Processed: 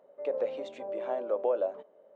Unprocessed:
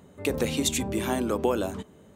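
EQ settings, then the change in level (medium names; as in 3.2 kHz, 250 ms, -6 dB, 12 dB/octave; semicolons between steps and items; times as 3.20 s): resonant high-pass 570 Hz, resonance Q 6.8; tape spacing loss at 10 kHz 42 dB; -8.0 dB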